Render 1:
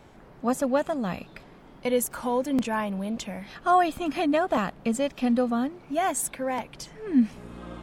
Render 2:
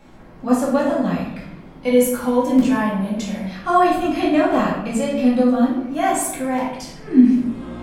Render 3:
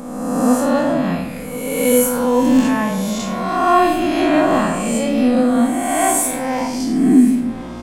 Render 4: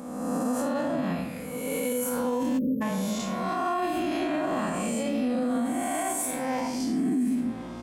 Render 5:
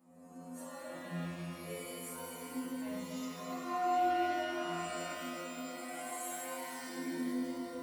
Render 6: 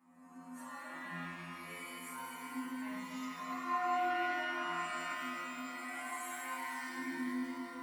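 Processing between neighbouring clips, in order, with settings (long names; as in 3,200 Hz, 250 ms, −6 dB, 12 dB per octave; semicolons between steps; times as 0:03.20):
convolution reverb RT60 0.80 s, pre-delay 4 ms, DRR −6 dB; level −1 dB
peak hold with a rise ahead of every peak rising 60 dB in 1.48 s; high-shelf EQ 4,600 Hz +4.5 dB; single-tap delay 1,042 ms −18 dB; level −1 dB
high-pass filter 64 Hz; time-frequency box erased 0:02.58–0:02.81, 590–12,000 Hz; brickwall limiter −12 dBFS, peak gain reduction 10 dB; level −8 dB
noise reduction from a noise print of the clip's start 11 dB; stiff-string resonator 85 Hz, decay 0.8 s, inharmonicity 0.002; reverb with rising layers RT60 4 s, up +12 semitones, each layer −8 dB, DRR −3.5 dB; level −2 dB
octave-band graphic EQ 125/250/500/1,000/2,000 Hz −11/+8/−12/+11/+10 dB; level −5.5 dB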